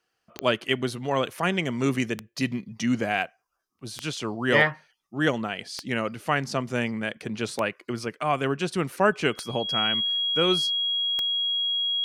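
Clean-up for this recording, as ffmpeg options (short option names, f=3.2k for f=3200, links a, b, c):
-af "adeclick=t=4,bandreject=f=3.3k:w=30"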